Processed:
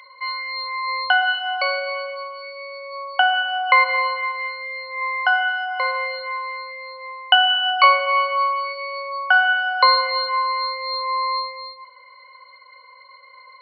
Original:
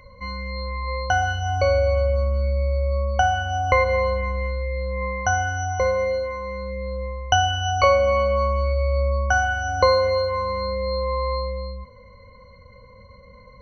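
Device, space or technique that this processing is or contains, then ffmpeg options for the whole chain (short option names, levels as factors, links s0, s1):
musical greeting card: -filter_complex "[0:a]aresample=11025,aresample=44100,highpass=f=900:w=0.5412,highpass=f=900:w=1.3066,equalizer=f=3400:t=o:w=0.37:g=7.5,asettb=1/sr,asplit=3[s0][s1][s2];[s0]atrim=end=7.094[s3];[s1]atrim=start=7.09:end=8.65,asetpts=PTS-STARTPTS,afade=t=in:d=0.004:c=qsin,afade=t=out:st=1.556:d=0.004:c=qsin,lowpass=5000[s4];[s2]atrim=start=8.646[s5];[s3][s4]acrossfade=d=0.004:c1=hsin:c2=qsin[s6];[s6][s5]acrossfade=d=0.004:c1=qsin:c2=hsin,lowshelf=f=460:g=4,volume=2.24"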